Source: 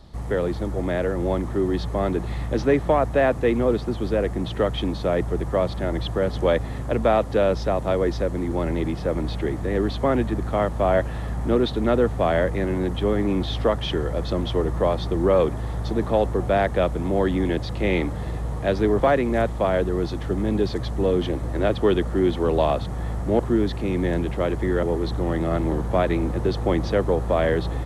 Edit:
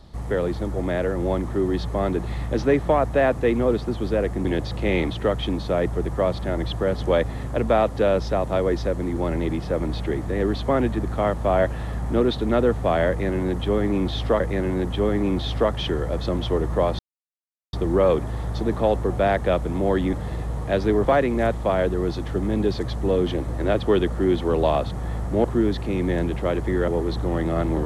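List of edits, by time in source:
12.44–13.75 loop, 2 plays
15.03 insert silence 0.74 s
17.43–18.08 move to 4.45

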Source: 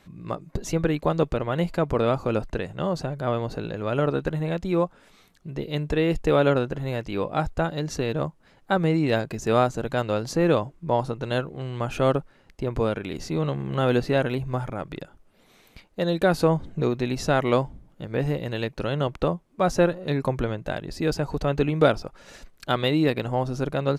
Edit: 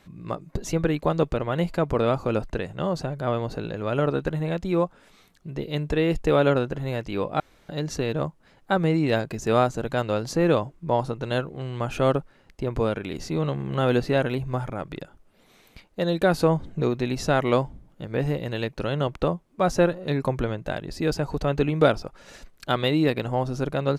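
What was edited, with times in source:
7.4–7.69 room tone

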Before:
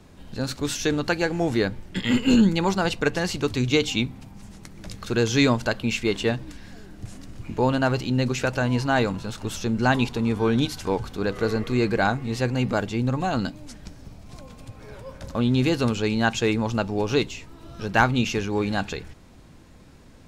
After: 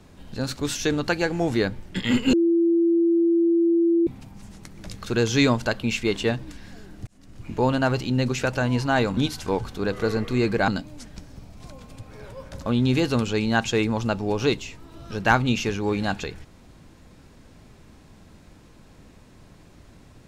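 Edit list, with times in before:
2.33–4.07 bleep 337 Hz -16 dBFS
7.07–7.54 fade in linear
9.17–10.56 cut
12.07–13.37 cut

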